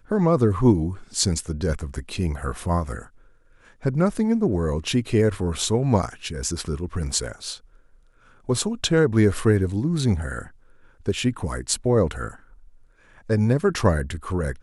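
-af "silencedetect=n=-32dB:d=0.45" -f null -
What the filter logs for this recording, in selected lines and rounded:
silence_start: 3.02
silence_end: 3.83 | silence_duration: 0.82
silence_start: 7.56
silence_end: 8.49 | silence_duration: 0.93
silence_start: 10.46
silence_end: 11.06 | silence_duration: 0.60
silence_start: 12.31
silence_end: 13.30 | silence_duration: 0.99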